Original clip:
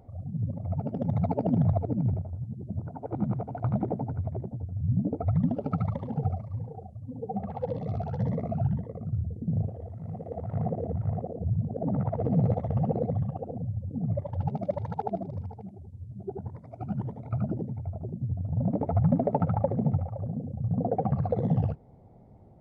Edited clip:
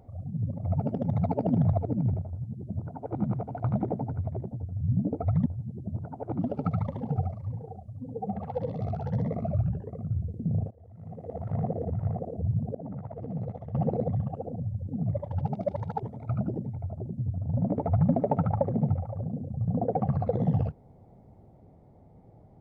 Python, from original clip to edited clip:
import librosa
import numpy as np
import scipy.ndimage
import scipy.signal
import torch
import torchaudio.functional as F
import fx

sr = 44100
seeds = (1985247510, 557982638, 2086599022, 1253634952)

y = fx.edit(x, sr, fx.clip_gain(start_s=0.63, length_s=0.32, db=3.0),
    fx.duplicate(start_s=2.29, length_s=0.93, to_s=5.46),
    fx.speed_span(start_s=8.58, length_s=0.32, speed=0.87),
    fx.fade_in_from(start_s=9.73, length_s=0.71, floor_db=-22.0),
    fx.clip_gain(start_s=11.77, length_s=1.0, db=-10.0),
    fx.cut(start_s=15.05, length_s=2.01), tone=tone)